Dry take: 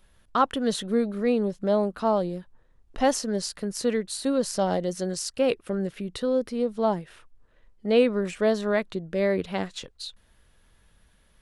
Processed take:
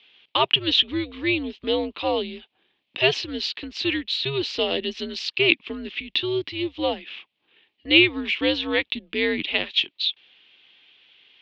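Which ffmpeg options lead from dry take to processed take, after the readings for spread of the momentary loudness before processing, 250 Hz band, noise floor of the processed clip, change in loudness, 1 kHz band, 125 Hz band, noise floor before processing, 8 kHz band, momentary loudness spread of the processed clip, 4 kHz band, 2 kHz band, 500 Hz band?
8 LU, -1.0 dB, -75 dBFS, +3.0 dB, -2.5 dB, -2.5 dB, -61 dBFS, -13.0 dB, 11 LU, +15.0 dB, +12.5 dB, -2.5 dB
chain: -af "aexciter=amount=12.5:drive=7.3:freq=2.5k,highpass=f=340:t=q:w=0.5412,highpass=f=340:t=q:w=1.307,lowpass=f=3.3k:t=q:w=0.5176,lowpass=f=3.3k:t=q:w=0.7071,lowpass=f=3.3k:t=q:w=1.932,afreqshift=-140"

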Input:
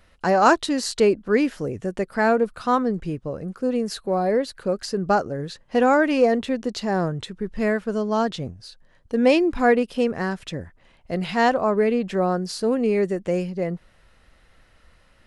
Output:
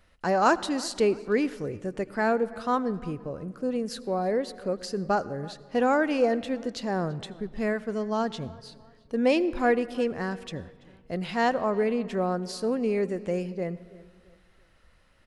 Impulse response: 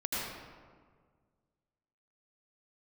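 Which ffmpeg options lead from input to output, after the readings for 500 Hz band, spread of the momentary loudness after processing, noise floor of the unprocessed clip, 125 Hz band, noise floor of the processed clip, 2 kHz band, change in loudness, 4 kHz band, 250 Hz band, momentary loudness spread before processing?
-5.5 dB, 12 LU, -57 dBFS, -5.5 dB, -60 dBFS, -5.5 dB, -5.5 dB, -5.5 dB, -5.5 dB, 12 LU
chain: -filter_complex "[0:a]asplit=2[a][b];[b]adelay=334,lowpass=f=5k:p=1,volume=-22dB,asplit=2[c][d];[d]adelay=334,lowpass=f=5k:p=1,volume=0.39,asplit=2[e][f];[f]adelay=334,lowpass=f=5k:p=1,volume=0.39[g];[a][c][e][g]amix=inputs=4:normalize=0,asplit=2[h][i];[1:a]atrim=start_sample=2205[j];[i][j]afir=irnorm=-1:irlink=0,volume=-23dB[k];[h][k]amix=inputs=2:normalize=0,volume=-6dB"

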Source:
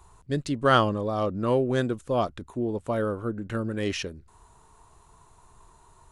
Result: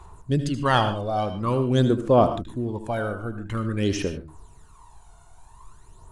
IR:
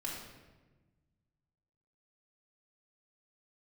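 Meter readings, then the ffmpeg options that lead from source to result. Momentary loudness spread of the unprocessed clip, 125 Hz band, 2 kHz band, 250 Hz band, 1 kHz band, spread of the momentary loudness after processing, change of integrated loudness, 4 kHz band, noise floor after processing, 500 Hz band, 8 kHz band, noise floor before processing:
10 LU, +6.0 dB, +0.5 dB, +3.5 dB, +3.0 dB, 11 LU, +3.0 dB, +2.0 dB, -51 dBFS, +2.5 dB, +3.0 dB, -57 dBFS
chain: -filter_complex "[0:a]aphaser=in_gain=1:out_gain=1:delay=1.4:decay=0.64:speed=0.48:type=sinusoidal,asplit=2[a][b];[1:a]atrim=start_sample=2205,atrim=end_sample=3528,adelay=76[c];[b][c]afir=irnorm=-1:irlink=0,volume=-8.5dB[d];[a][d]amix=inputs=2:normalize=0"

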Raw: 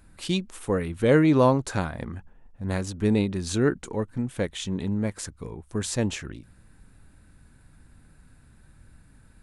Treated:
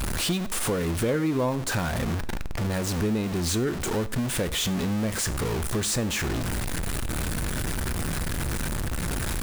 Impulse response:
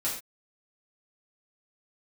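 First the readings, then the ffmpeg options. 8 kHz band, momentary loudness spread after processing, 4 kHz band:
+8.5 dB, 5 LU, +6.5 dB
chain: -filter_complex "[0:a]aeval=exprs='val(0)+0.5*0.075*sgn(val(0))':c=same,asplit=2[a][b];[1:a]atrim=start_sample=2205[c];[b][c]afir=irnorm=-1:irlink=0,volume=-18dB[d];[a][d]amix=inputs=2:normalize=0,acompressor=threshold=-25dB:ratio=3"

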